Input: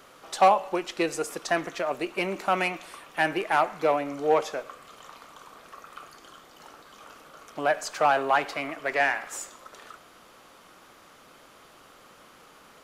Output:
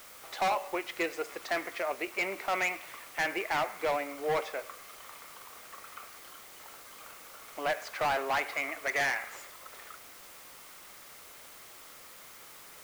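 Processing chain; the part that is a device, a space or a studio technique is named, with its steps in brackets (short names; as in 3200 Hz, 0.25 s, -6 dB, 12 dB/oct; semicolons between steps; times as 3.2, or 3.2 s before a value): drive-through speaker (BPF 370–3900 Hz; bell 2100 Hz +9 dB 0.36 oct; hard clip -21 dBFS, distortion -8 dB; white noise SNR 16 dB); gain -4 dB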